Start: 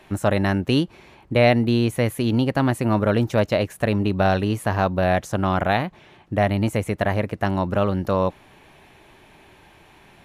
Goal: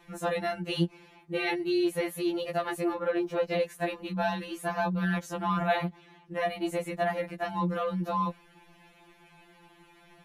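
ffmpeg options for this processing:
-filter_complex "[0:a]asettb=1/sr,asplit=3[a][b][c];[a]atrim=end=2.934[d];[b]atrim=start=2.93:end=3.51,asetpts=PTS-STARTPTS,afade=t=in:d=0.004:c=qsin,afade=t=out:st=0.576:d=0.004:c=qsin,equalizer=f=9.6k:t=o:w=2.3:g=-11[e];[c]atrim=start=3.506[f];[d][e]acrossfade=d=0.004:c1=hsin:c2=qsin[g];[g][f]acrossfade=d=0.004:c1=qsin:c2=hsin,afftfilt=real='re*2.83*eq(mod(b,8),0)':imag='im*2.83*eq(mod(b,8),0)':win_size=2048:overlap=0.75,volume=-4.5dB"

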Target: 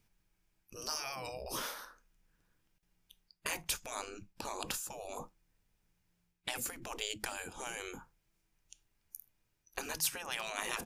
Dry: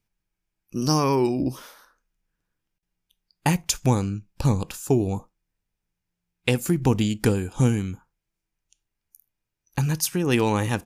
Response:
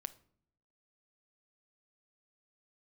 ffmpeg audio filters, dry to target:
-af "areverse,acompressor=threshold=-30dB:ratio=6,areverse,afftfilt=real='re*lt(hypot(re,im),0.0398)':imag='im*lt(hypot(re,im),0.0398)':win_size=1024:overlap=0.75,volume=5dB"

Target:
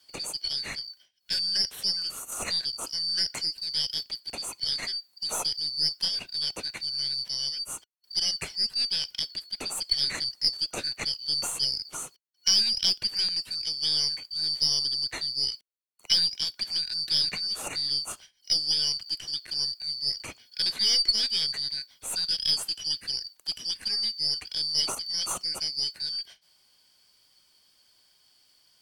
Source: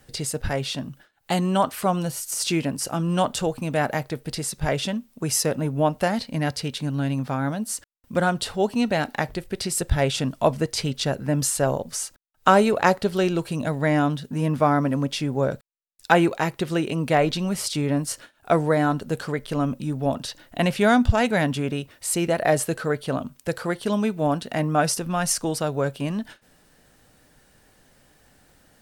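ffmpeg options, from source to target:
-filter_complex "[0:a]afftfilt=real='real(if(lt(b,272),68*(eq(floor(b/68),0)*3+eq(floor(b/68),1)*2+eq(floor(b/68),2)*1+eq(floor(b/68),3)*0)+mod(b,68),b),0)':imag='imag(if(lt(b,272),68*(eq(floor(b/68),0)*3+eq(floor(b/68),1)*2+eq(floor(b/68),2)*1+eq(floor(b/68),3)*0)+mod(b,68),b),0)':win_size=2048:overlap=0.75,aeval=exprs='0.891*(cos(1*acos(clip(val(0)/0.891,-1,1)))-cos(1*PI/2))+0.0282*(cos(8*acos(clip(val(0)/0.891,-1,1)))-cos(8*PI/2))':c=same,acrossover=split=380|660|6800[a][b][c][d];[d]asoftclip=type=tanh:threshold=-23dB[e];[a][b][c][e]amix=inputs=4:normalize=0,volume=-6dB"

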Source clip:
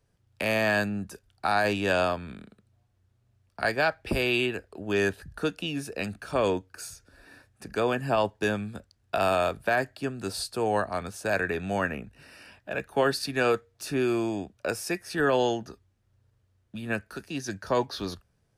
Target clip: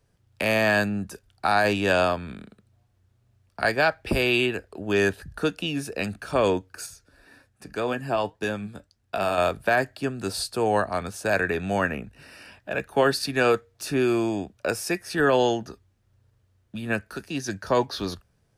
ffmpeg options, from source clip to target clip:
-filter_complex "[0:a]asettb=1/sr,asplit=3[a][b][c];[a]atrim=end=6.864[d];[b]atrim=start=6.86:end=9.38,asetpts=PTS-STARTPTS,afade=t=in:d=0.004:c=qsin,afade=t=out:st=2.516:d=0.004:c=qsin,flanger=delay=3.6:depth=3.3:regen=74:speed=1.8:shape=sinusoidal[e];[c]atrim=start=9.376[f];[d][e]acrossfade=d=0.004:c1=hsin:c2=qsin[g];[g][f]acrossfade=d=0.004:c1=qsin:c2=hsin,volume=3.5dB"

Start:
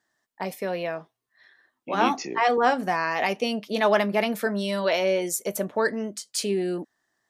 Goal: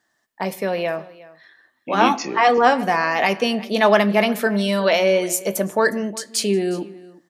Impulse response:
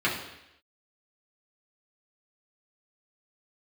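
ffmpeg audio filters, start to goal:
-filter_complex "[0:a]aecho=1:1:361:0.0944,asplit=2[a][b];[1:a]atrim=start_sample=2205,afade=t=out:st=0.28:d=0.01,atrim=end_sample=12789[c];[b][c]afir=irnorm=-1:irlink=0,volume=-25dB[d];[a][d]amix=inputs=2:normalize=0,volume=5.5dB"

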